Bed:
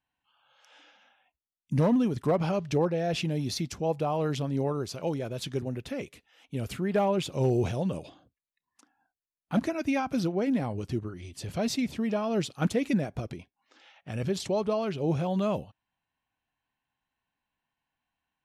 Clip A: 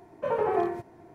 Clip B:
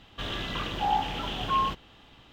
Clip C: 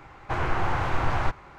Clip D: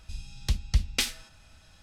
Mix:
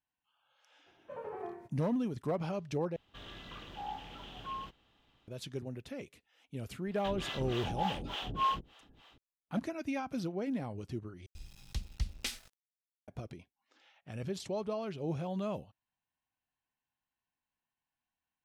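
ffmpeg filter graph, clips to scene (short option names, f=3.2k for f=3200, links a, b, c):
-filter_complex "[2:a]asplit=2[a][b];[0:a]volume=-8.5dB[c];[b]acrossover=split=470[d][e];[d]aeval=exprs='val(0)*(1-1/2+1/2*cos(2*PI*3.4*n/s))':c=same[f];[e]aeval=exprs='val(0)*(1-1/2-1/2*cos(2*PI*3.4*n/s))':c=same[g];[f][g]amix=inputs=2:normalize=0[h];[4:a]aeval=exprs='val(0)*gte(abs(val(0)),0.00668)':c=same[i];[c]asplit=3[j][k][l];[j]atrim=end=2.964[m];[a]atrim=end=2.32,asetpts=PTS-STARTPTS,volume=-15.5dB[n];[k]atrim=start=5.276:end=11.264[o];[i]atrim=end=1.82,asetpts=PTS-STARTPTS,volume=-11dB[p];[l]atrim=start=13.076[q];[1:a]atrim=end=1.14,asetpts=PTS-STARTPTS,volume=-16.5dB,afade=t=in:d=0.004:c=hsin,afade=t=out:st=1.136:d=0.004:c=hsin,adelay=860[r];[h]atrim=end=2.32,asetpts=PTS-STARTPTS,volume=-2.5dB,afade=t=in:d=0.004:c=hsin,afade=t=out:st=2.316:d=0.004:c=hsin,adelay=6860[s];[m][n]acrossfade=d=0.004:c1=hsin:c2=hsin[t];[t][o]acrossfade=d=0.004:c1=hsin:c2=hsin[u];[u][p]acrossfade=d=0.004:c1=hsin:c2=hsin[v];[v][q]acrossfade=d=0.004:c1=hsin:c2=hsin[w];[w][r][s]amix=inputs=3:normalize=0"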